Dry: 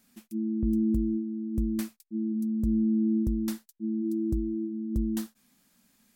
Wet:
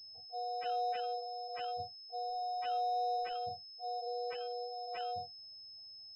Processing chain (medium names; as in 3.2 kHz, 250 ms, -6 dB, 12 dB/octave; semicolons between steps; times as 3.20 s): spectrum inverted on a logarithmic axis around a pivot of 400 Hz; 2.27–3.40 s: added noise pink -55 dBFS; spectral gate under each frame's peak -30 dB strong; class-D stage that switches slowly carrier 5.2 kHz; trim -9 dB